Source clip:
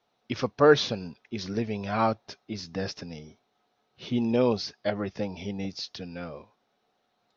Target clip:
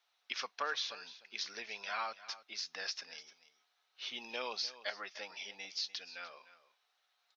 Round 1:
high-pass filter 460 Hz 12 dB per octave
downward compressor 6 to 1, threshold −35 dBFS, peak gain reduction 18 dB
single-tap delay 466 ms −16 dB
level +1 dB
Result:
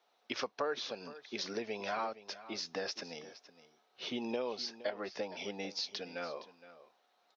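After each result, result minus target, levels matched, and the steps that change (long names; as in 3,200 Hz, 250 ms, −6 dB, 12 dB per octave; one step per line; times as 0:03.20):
echo 167 ms late; 500 Hz band +9.0 dB
change: single-tap delay 299 ms −16 dB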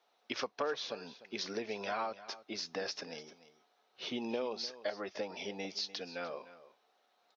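500 Hz band +9.0 dB
change: high-pass filter 1,500 Hz 12 dB per octave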